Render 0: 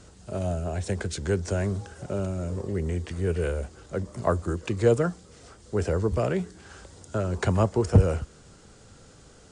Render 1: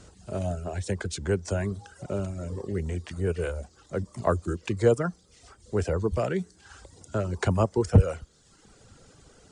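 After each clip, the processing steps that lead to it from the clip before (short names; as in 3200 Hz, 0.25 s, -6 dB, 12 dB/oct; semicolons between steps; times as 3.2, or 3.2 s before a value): reverb removal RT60 0.9 s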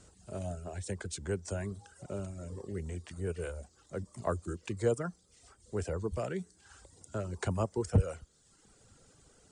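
bell 8500 Hz +7 dB 0.66 oct; gain -8.5 dB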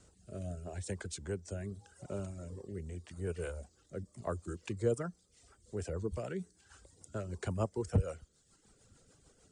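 rotary speaker horn 0.8 Hz, later 6.7 Hz, at 4.49; gain -1 dB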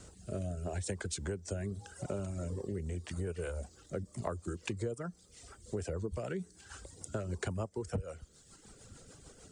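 compressor 10:1, threshold -43 dBFS, peak gain reduction 19 dB; gain +9.5 dB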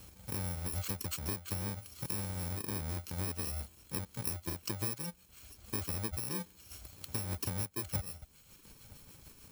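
FFT order left unsorted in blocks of 64 samples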